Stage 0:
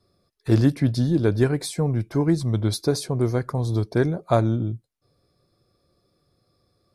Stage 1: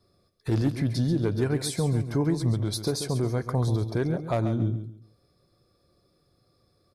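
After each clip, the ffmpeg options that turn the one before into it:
-af "asoftclip=type=hard:threshold=-10.5dB,alimiter=limit=-17.5dB:level=0:latency=1:release=135,aecho=1:1:137|274|411:0.316|0.0822|0.0214"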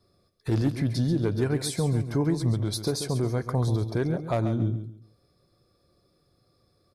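-af anull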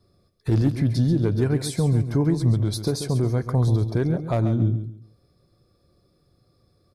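-af "lowshelf=f=300:g=6.5"

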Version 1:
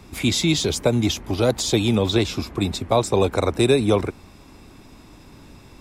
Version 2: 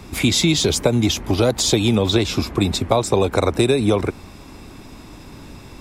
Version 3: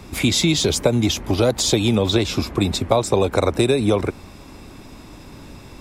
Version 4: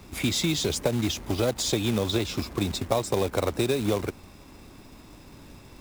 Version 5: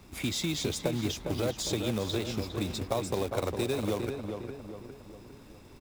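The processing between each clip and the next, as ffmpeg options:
-af "acompressor=threshold=-19dB:ratio=6,volume=6.5dB"
-af "equalizer=f=560:t=o:w=0.28:g=2.5,volume=-1dB"
-af "acrusher=bits=3:mode=log:mix=0:aa=0.000001,volume=-8dB"
-filter_complex "[0:a]asplit=2[a][b];[b]adelay=406,lowpass=f=2.3k:p=1,volume=-6dB,asplit=2[c][d];[d]adelay=406,lowpass=f=2.3k:p=1,volume=0.48,asplit=2[e][f];[f]adelay=406,lowpass=f=2.3k:p=1,volume=0.48,asplit=2[g][h];[h]adelay=406,lowpass=f=2.3k:p=1,volume=0.48,asplit=2[i][j];[j]adelay=406,lowpass=f=2.3k:p=1,volume=0.48,asplit=2[k][l];[l]adelay=406,lowpass=f=2.3k:p=1,volume=0.48[m];[a][c][e][g][i][k][m]amix=inputs=7:normalize=0,volume=-6dB"

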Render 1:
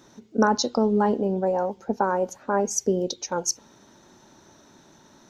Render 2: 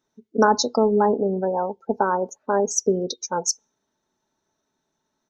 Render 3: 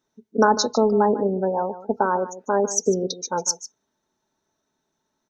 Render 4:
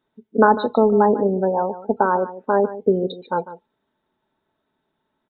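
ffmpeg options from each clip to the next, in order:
-af "equalizer=f=210:w=2.7:g=-6,aecho=1:1:4.6:0.36,afftdn=nr=25:nf=-33,volume=2.5dB"
-af "aecho=1:1:149:0.188"
-af "aresample=8000,aresample=44100,volume=3dB"

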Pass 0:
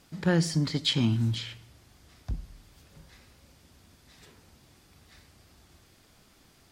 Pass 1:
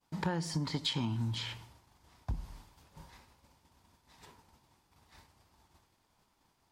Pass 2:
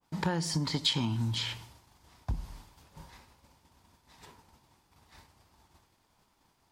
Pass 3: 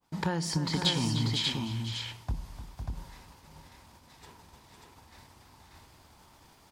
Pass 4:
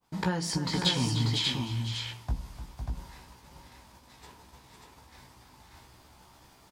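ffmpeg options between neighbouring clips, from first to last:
-af "agate=range=-33dB:threshold=-49dB:ratio=3:detection=peak,equalizer=f=930:t=o:w=0.46:g=14,acompressor=threshold=-30dB:ratio=12"
-af "adynamicequalizer=threshold=0.002:dfrequency=2700:dqfactor=0.7:tfrequency=2700:tqfactor=0.7:attack=5:release=100:ratio=0.375:range=2:mode=boostabove:tftype=highshelf,volume=3dB"
-af "areverse,acompressor=mode=upward:threshold=-50dB:ratio=2.5,areverse,aecho=1:1:300|505|590:0.266|0.422|0.631"
-filter_complex "[0:a]asplit=2[a][b];[b]adelay=16,volume=-5dB[c];[a][c]amix=inputs=2:normalize=0"

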